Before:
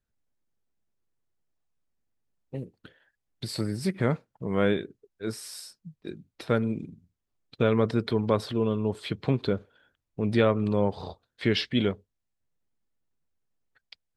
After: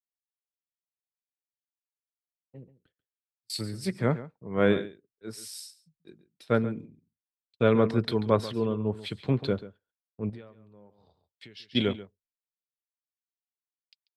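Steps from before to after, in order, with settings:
noise gate −51 dBFS, range −20 dB
0:02.55–0:03.50: volume swells 543 ms
slap from a distant wall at 24 metres, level −12 dB
0:10.29–0:11.75: downward compressor 6 to 1, threshold −36 dBFS, peak gain reduction 18 dB
multiband upward and downward expander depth 100%
level −3 dB

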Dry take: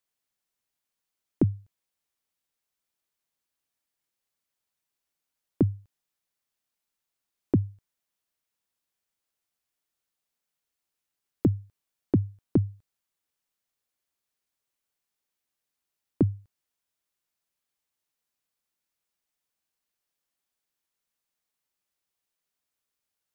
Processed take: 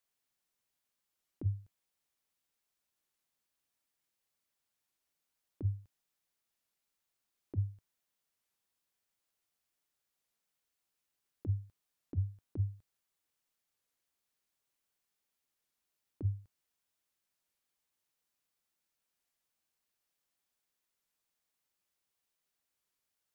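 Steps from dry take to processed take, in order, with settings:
dynamic equaliser 110 Hz, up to −4 dB, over −39 dBFS, Q 6.2
compressor whose output falls as the input rises −26 dBFS, ratio −0.5
wow of a warped record 33 1/3 rpm, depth 160 cents
level −5 dB

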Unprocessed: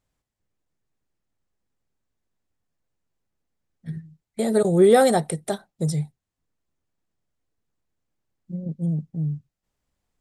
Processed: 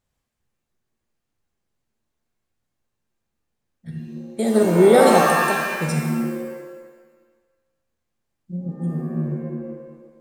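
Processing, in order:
tape delay 67 ms, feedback 81%, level −15 dB, low-pass 5,500 Hz
reverb with rising layers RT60 1.2 s, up +7 semitones, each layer −2 dB, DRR 2 dB

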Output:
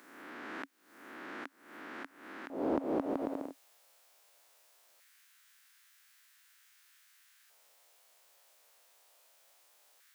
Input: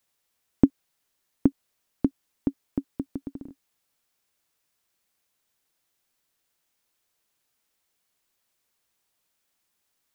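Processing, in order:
peak hold with a rise ahead of every peak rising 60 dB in 1.13 s
downward compressor 2.5 to 1, threshold −29 dBFS, peak gain reduction 14 dB
auto-filter high-pass square 0.2 Hz 590–1,600 Hz
highs frequency-modulated by the lows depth 0.24 ms
level +7.5 dB

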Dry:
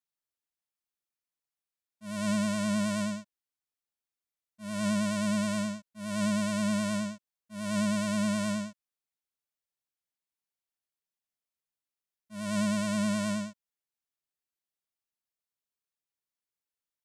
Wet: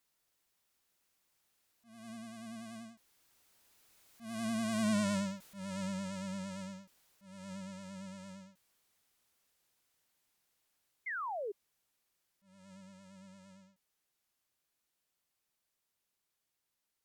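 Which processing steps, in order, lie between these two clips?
converter with a step at zero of −46 dBFS
source passing by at 0:04.99, 29 m/s, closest 7.3 metres
in parallel at +1 dB: downward compressor, threshold −41 dBFS, peak gain reduction 12.5 dB
on the sum: sound drawn into the spectrogram fall, 0:11.06–0:11.52, 380–2,200 Hz −34 dBFS
level −4.5 dB

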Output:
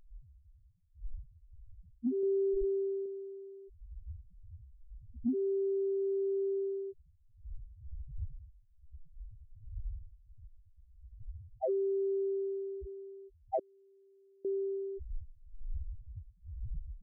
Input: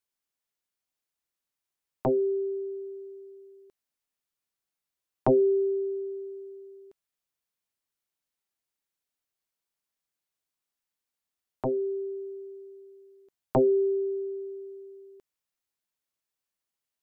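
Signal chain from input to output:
wind on the microphone 88 Hz −45 dBFS
in parallel at +1 dB: speech leveller within 3 dB 0.5 s
on the sum: low-pass filter sweep 270 Hz → 770 Hz, 0:05.98–0:07.51
spectral peaks only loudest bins 1
downward compressor 8 to 1, threshold −30 dBFS, peak gain reduction 15 dB
0:02.23–0:03.06: low-shelf EQ 260 Hz +7 dB
0:13.59–0:14.45: gate with flip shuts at −35 dBFS, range −32 dB

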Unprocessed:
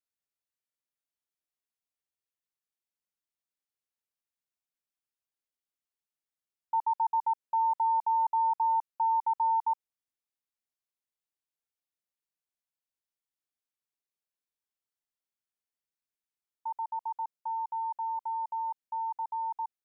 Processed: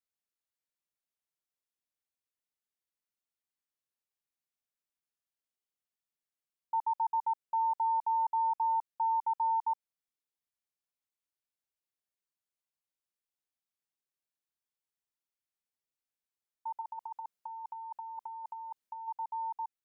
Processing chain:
0:16.81–0:19.08: compressor whose output falls as the input rises −37 dBFS, ratio −0.5
level −3 dB

